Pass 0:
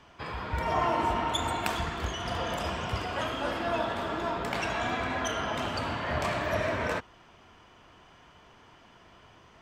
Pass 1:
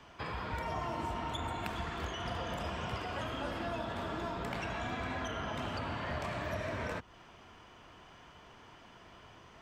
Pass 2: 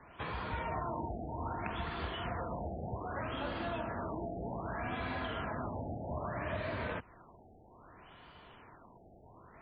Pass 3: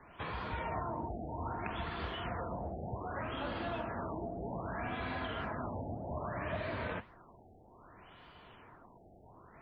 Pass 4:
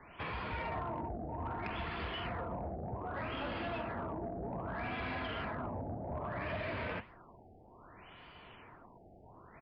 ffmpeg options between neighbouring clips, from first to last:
-filter_complex "[0:a]acrossover=split=220|3800[a][b][c];[a]acompressor=threshold=-40dB:ratio=4[d];[b]acompressor=threshold=-38dB:ratio=4[e];[c]acompressor=threshold=-57dB:ratio=4[f];[d][e][f]amix=inputs=3:normalize=0"
-af "afftfilt=real='re*lt(b*sr/1024,840*pow(4900/840,0.5+0.5*sin(2*PI*0.63*pts/sr)))':imag='im*lt(b*sr/1024,840*pow(4900/840,0.5+0.5*sin(2*PI*0.63*pts/sr)))':win_size=1024:overlap=0.75"
-af "flanger=delay=2.4:depth=8.8:regen=82:speed=1.8:shape=sinusoidal,volume=4dB"
-af "aexciter=amount=1:drive=7.2:freq=2.1k,asoftclip=type=tanh:threshold=-32.5dB,aresample=11025,aresample=44100,volume=1dB"

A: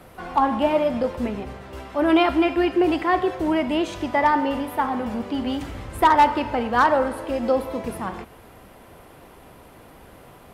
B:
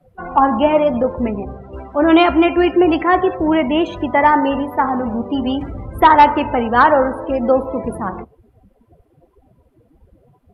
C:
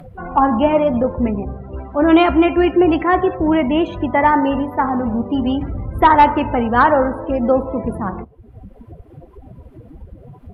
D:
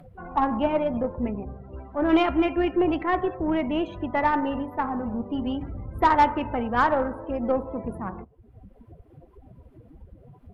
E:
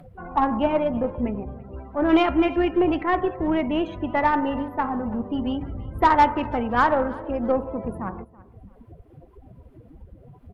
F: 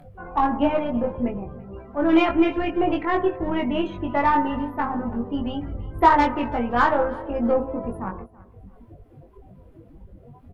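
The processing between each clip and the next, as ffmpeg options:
-af "afftdn=nr=29:nf=-35,volume=6.5dB"
-af "acompressor=mode=upward:threshold=-29dB:ratio=2.5,bass=f=250:g=6,treble=f=4k:g=-7,volume=-1.5dB"
-af "aeval=exprs='0.891*(cos(1*acos(clip(val(0)/0.891,-1,1)))-cos(1*PI/2))+0.0891*(cos(3*acos(clip(val(0)/0.891,-1,1)))-cos(3*PI/2))+0.02*(cos(6*acos(clip(val(0)/0.891,-1,1)))-cos(6*PI/2))':c=same,volume=-7dB"
-af "aecho=1:1:331|662:0.0841|0.0261,volume=2dB"
-filter_complex "[0:a]flanger=delay=1.2:depth=5.1:regen=69:speed=0.36:shape=triangular,asplit=2[a][b];[b]adelay=21,volume=-2.5dB[c];[a][c]amix=inputs=2:normalize=0,volume=3dB"

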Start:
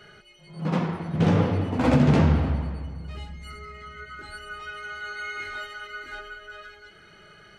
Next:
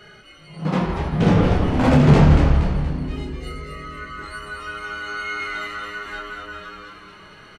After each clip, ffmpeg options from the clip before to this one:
-filter_complex "[0:a]asplit=2[a][b];[b]adelay=27,volume=-5.5dB[c];[a][c]amix=inputs=2:normalize=0,asplit=2[d][e];[e]asplit=6[f][g][h][i][j][k];[f]adelay=236,afreqshift=-110,volume=-5dB[l];[g]adelay=472,afreqshift=-220,volume=-11.6dB[m];[h]adelay=708,afreqshift=-330,volume=-18.1dB[n];[i]adelay=944,afreqshift=-440,volume=-24.7dB[o];[j]adelay=1180,afreqshift=-550,volume=-31.2dB[p];[k]adelay=1416,afreqshift=-660,volume=-37.8dB[q];[l][m][n][o][p][q]amix=inputs=6:normalize=0[r];[d][r]amix=inputs=2:normalize=0,volume=3.5dB"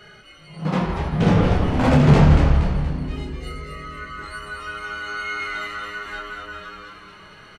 -af "equalizer=f=310:w=1.5:g=-2.5"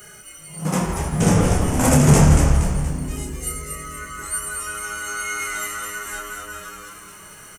-af "aexciter=amount=13.8:drive=8:freq=6.3k"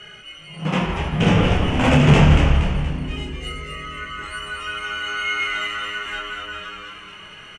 -af "lowpass=f=2.9k:t=q:w=3.8"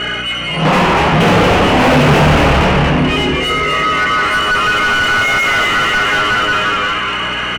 -filter_complex "[0:a]aeval=exprs='val(0)+0.00708*(sin(2*PI*60*n/s)+sin(2*PI*2*60*n/s)/2+sin(2*PI*3*60*n/s)/3+sin(2*PI*4*60*n/s)/4+sin(2*PI*5*60*n/s)/5)':c=same,asplit=2[a][b];[b]highpass=f=720:p=1,volume=37dB,asoftclip=type=tanh:threshold=-1dB[c];[a][c]amix=inputs=2:normalize=0,lowpass=f=1.2k:p=1,volume=-6dB"

